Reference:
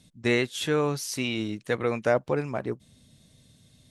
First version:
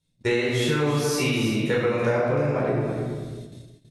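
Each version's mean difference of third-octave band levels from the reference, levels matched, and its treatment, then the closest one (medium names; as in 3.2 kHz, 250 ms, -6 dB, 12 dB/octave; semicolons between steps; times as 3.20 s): 9.5 dB: simulated room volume 880 m³, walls mixed, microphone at 4.5 m; compression, threshold -20 dBFS, peak gain reduction 9.5 dB; gate -40 dBFS, range -22 dB; delay 327 ms -9.5 dB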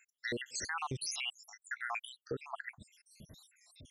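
16.0 dB: random holes in the spectrogram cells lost 83%; compression, threshold -36 dBFS, peak gain reduction 13.5 dB; peak limiter -35.5 dBFS, peak gain reduction 10.5 dB; warped record 45 rpm, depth 160 cents; trim +7.5 dB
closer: first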